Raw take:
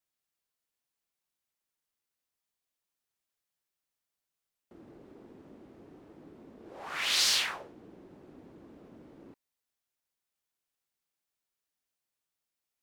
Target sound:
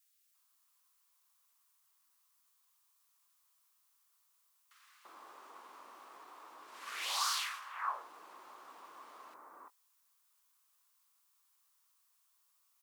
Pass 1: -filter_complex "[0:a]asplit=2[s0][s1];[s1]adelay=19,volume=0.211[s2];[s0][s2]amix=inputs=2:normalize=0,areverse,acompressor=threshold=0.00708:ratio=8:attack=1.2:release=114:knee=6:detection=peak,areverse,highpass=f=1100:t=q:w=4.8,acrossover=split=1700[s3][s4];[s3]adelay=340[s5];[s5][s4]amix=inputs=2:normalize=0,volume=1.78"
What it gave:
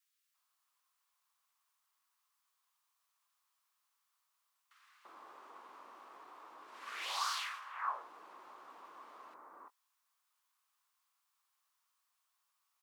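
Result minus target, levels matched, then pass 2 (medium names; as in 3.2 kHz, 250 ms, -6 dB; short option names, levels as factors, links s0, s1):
8 kHz band -3.5 dB
-filter_complex "[0:a]asplit=2[s0][s1];[s1]adelay=19,volume=0.211[s2];[s0][s2]amix=inputs=2:normalize=0,areverse,acompressor=threshold=0.00708:ratio=8:attack=1.2:release=114:knee=6:detection=peak,areverse,highpass=f=1100:t=q:w=4.8,highshelf=f=5000:g=10.5,acrossover=split=1700[s3][s4];[s3]adelay=340[s5];[s5][s4]amix=inputs=2:normalize=0,volume=1.78"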